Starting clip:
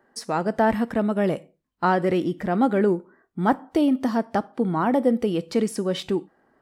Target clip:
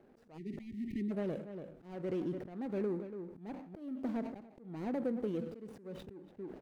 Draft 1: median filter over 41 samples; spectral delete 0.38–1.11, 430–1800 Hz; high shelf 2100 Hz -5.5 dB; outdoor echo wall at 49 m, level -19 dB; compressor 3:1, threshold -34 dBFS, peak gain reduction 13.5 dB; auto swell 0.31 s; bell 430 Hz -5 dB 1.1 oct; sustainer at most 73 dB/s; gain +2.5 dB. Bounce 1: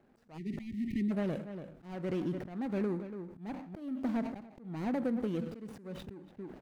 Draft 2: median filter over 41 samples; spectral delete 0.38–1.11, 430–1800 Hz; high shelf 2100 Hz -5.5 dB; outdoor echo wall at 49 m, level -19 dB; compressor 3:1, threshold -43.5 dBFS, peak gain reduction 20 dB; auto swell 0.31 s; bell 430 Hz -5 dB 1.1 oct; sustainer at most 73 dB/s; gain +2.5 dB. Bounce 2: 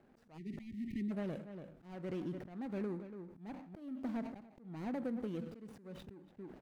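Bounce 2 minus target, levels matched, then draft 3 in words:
500 Hz band -2.5 dB
median filter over 41 samples; spectral delete 0.38–1.11, 430–1800 Hz; high shelf 2100 Hz -5.5 dB; outdoor echo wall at 49 m, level -19 dB; compressor 3:1, threshold -43.5 dBFS, peak gain reduction 20 dB; auto swell 0.31 s; bell 430 Hz +2 dB 1.1 oct; sustainer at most 73 dB/s; gain +2.5 dB

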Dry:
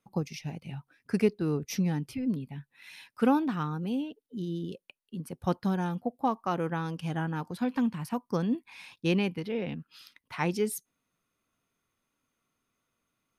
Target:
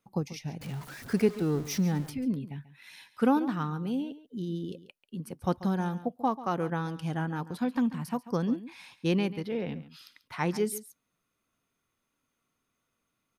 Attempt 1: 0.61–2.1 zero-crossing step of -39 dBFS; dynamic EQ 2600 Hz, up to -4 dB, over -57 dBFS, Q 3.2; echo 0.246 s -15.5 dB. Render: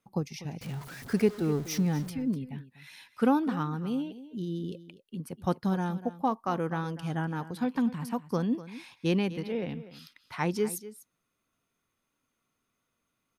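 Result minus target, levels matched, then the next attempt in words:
echo 0.107 s late
0.61–2.1 zero-crossing step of -39 dBFS; dynamic EQ 2600 Hz, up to -4 dB, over -57 dBFS, Q 3.2; echo 0.139 s -15.5 dB

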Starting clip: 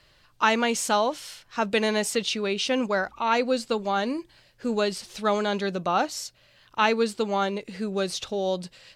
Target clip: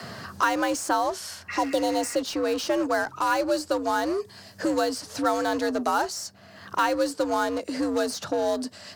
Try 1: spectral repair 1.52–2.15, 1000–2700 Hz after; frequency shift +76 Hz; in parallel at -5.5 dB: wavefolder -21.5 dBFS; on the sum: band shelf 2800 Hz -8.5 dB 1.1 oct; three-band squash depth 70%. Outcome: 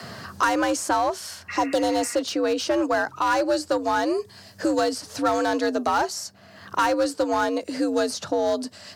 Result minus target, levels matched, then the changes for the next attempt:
wavefolder: distortion -22 dB
change: wavefolder -32.5 dBFS

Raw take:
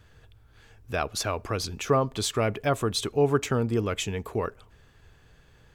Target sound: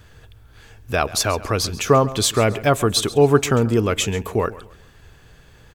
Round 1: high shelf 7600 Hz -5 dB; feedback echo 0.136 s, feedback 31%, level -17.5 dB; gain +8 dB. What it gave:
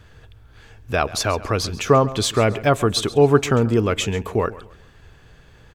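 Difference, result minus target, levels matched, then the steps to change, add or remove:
8000 Hz band -4.0 dB
change: high shelf 7600 Hz +5 dB

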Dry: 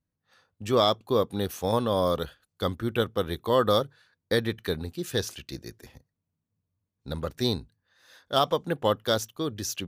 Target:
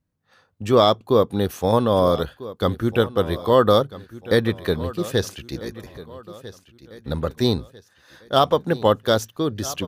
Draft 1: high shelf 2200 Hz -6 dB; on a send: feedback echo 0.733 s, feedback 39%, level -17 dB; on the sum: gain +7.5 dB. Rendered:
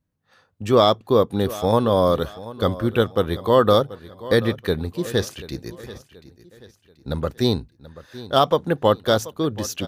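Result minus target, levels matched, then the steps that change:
echo 0.564 s early
change: feedback echo 1.297 s, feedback 39%, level -17 dB

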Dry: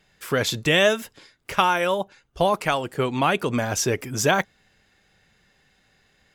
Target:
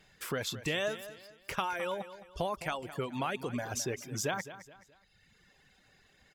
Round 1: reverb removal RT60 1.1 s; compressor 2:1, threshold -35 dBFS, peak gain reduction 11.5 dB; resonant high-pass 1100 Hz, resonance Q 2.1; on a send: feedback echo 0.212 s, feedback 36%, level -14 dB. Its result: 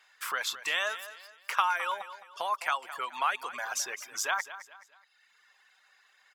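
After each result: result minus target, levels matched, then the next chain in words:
compressor: peak gain reduction -3.5 dB; 1000 Hz band +3.0 dB
reverb removal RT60 1.1 s; compressor 2:1, threshold -42 dBFS, peak gain reduction 15 dB; resonant high-pass 1100 Hz, resonance Q 2.1; on a send: feedback echo 0.212 s, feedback 36%, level -14 dB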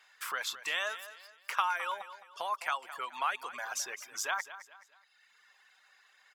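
1000 Hz band +3.0 dB
reverb removal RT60 1.1 s; compressor 2:1, threshold -42 dBFS, peak gain reduction 15 dB; on a send: feedback echo 0.212 s, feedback 36%, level -14 dB

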